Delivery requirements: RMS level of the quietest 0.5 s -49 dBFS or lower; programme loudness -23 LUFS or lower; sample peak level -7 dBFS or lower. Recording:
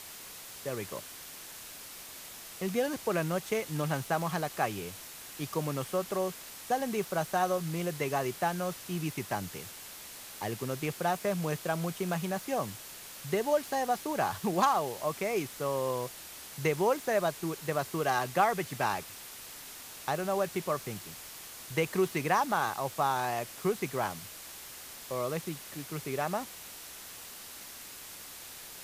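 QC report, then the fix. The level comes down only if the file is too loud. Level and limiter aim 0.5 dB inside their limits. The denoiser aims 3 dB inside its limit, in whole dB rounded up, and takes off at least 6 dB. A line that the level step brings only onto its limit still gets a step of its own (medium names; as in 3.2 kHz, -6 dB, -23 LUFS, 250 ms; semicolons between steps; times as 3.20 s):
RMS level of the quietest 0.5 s -47 dBFS: fail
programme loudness -33.0 LUFS: pass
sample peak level -12.0 dBFS: pass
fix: noise reduction 6 dB, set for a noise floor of -47 dBFS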